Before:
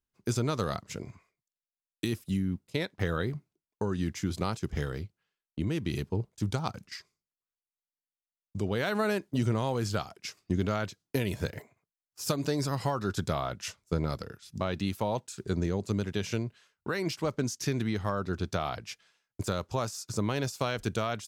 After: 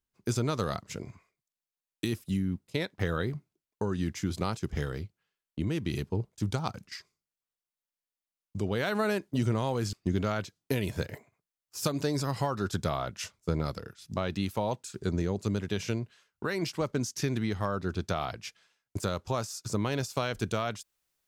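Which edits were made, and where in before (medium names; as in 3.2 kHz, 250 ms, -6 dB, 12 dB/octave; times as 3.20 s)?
9.93–10.37 s: delete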